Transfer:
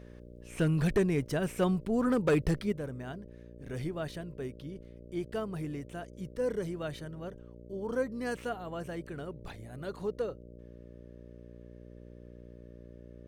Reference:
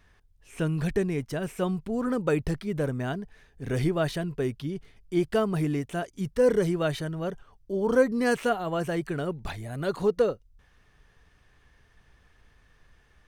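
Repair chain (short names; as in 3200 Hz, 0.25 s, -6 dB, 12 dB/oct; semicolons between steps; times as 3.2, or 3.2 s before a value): clip repair -20 dBFS; de-hum 59.5 Hz, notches 10; gain 0 dB, from 2.72 s +10.5 dB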